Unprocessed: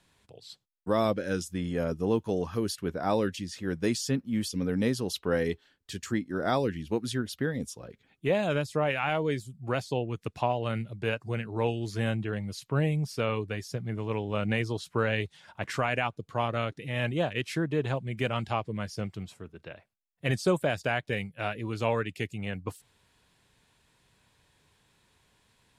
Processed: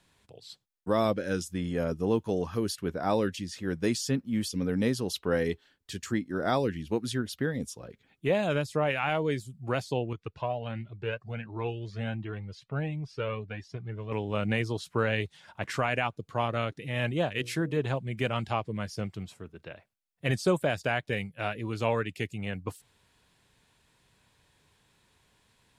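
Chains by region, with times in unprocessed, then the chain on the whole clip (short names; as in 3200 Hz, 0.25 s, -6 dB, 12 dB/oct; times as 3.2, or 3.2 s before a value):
10.13–14.12 LPF 4000 Hz + cascading flanger rising 1.4 Hz
17.33–17.77 high shelf 7900 Hz +6.5 dB + notches 60/120/180/240/300/360/420/480/540/600 Hz
whole clip: dry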